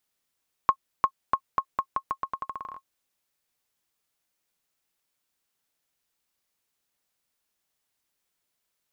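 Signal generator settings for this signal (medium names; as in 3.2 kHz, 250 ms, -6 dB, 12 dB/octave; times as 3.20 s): bouncing ball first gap 0.35 s, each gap 0.84, 1.08 kHz, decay 69 ms -8 dBFS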